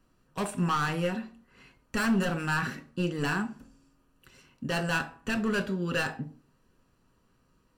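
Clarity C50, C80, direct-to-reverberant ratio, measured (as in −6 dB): 16.0 dB, 21.0 dB, 7.5 dB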